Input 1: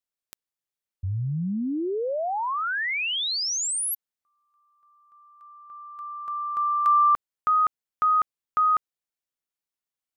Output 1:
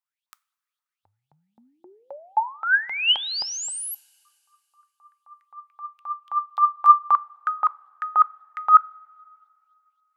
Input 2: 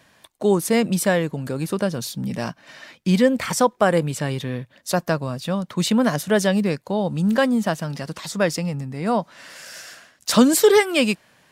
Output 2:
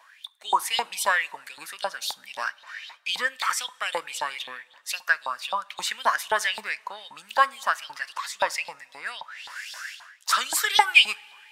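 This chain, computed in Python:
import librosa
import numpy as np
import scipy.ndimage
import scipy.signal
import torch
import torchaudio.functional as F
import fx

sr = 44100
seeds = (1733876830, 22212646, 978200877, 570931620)

y = fx.filter_lfo_highpass(x, sr, shape='saw_up', hz=3.8, low_hz=830.0, high_hz=3900.0, q=7.6)
y = fx.rev_double_slope(y, sr, seeds[0], early_s=0.3, late_s=2.5, knee_db=-18, drr_db=18.0)
y = y * librosa.db_to_amplitude(-4.5)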